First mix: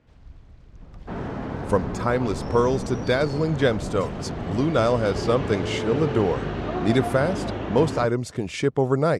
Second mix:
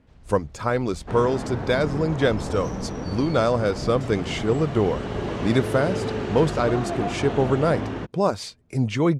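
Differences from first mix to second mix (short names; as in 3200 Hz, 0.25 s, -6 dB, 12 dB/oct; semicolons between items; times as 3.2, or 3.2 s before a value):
speech: entry -1.40 s; second sound: remove air absorption 90 m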